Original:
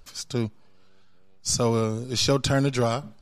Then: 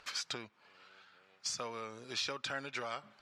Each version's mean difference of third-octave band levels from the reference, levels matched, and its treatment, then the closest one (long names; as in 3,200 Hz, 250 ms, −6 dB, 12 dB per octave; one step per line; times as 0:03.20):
7.5 dB: downward compressor 10 to 1, threshold −36 dBFS, peak gain reduction 19 dB
resonant band-pass 1,900 Hz, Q 1.1
level +10 dB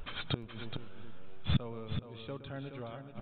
12.5 dB: feedback echo with a low-pass in the loop 118 ms, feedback 16%, low-pass 2,300 Hz, level −12 dB
downsampling to 8,000 Hz
gate with flip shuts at −23 dBFS, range −28 dB
single-tap delay 423 ms −8 dB
level +7.5 dB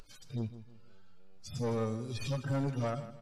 5.5 dB: harmonic-percussive split with one part muted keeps harmonic
upward compression, threshold −42 dBFS
soft clipping −22.5 dBFS, distortion −10 dB
repeating echo 158 ms, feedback 34%, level −14 dB
level −5 dB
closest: third